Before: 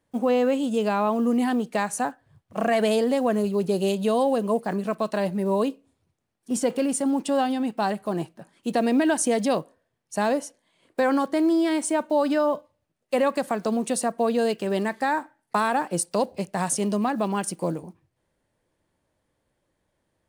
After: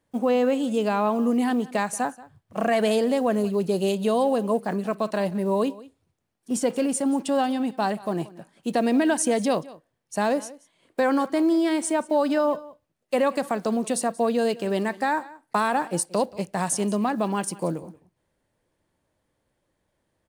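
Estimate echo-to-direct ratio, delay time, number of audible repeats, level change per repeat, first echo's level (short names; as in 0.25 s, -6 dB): -20.0 dB, 0.181 s, 1, no steady repeat, -20.0 dB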